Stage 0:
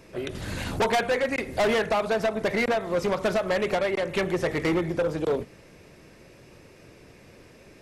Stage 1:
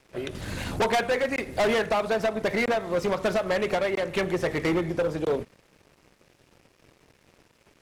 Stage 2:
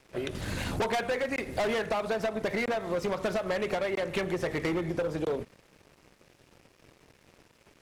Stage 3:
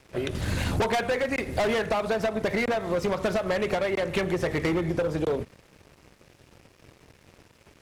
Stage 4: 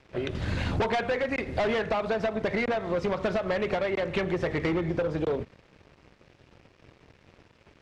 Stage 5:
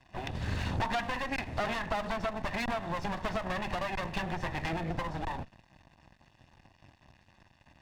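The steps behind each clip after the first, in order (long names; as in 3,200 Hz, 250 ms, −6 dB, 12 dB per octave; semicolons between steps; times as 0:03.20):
dead-zone distortion −50 dBFS
downward compressor, threshold −27 dBFS, peak gain reduction 6 dB
parametric band 77 Hz +5.5 dB 1.7 octaves; level +3.5 dB
low-pass filter 4,300 Hz 12 dB per octave; level −1.5 dB
lower of the sound and its delayed copy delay 1.1 ms; level −3 dB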